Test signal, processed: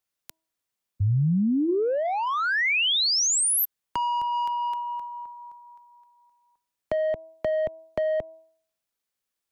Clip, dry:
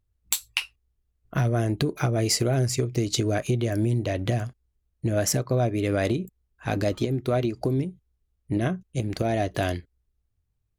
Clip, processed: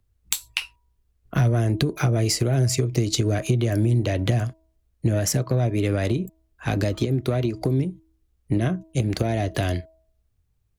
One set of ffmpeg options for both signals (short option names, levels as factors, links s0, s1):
-filter_complex "[0:a]bandreject=f=322.2:t=h:w=4,bandreject=f=644.4:t=h:w=4,bandreject=f=966.6:t=h:w=4,acrossover=split=130[s0][s1];[s1]acompressor=threshold=0.0501:ratio=10[s2];[s0][s2]amix=inputs=2:normalize=0,acrossover=split=450|1800[s3][s4][s5];[s4]asoftclip=type=tanh:threshold=0.0266[s6];[s3][s6][s5]amix=inputs=3:normalize=0,volume=2"